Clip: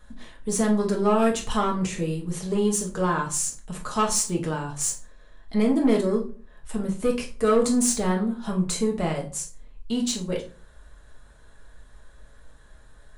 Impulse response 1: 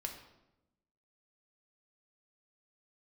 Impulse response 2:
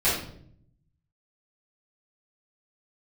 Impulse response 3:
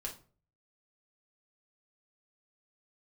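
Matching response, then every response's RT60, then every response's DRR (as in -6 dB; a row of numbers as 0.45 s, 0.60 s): 3; 0.95 s, 0.65 s, no single decay rate; 2.5 dB, -13.5 dB, -1.5 dB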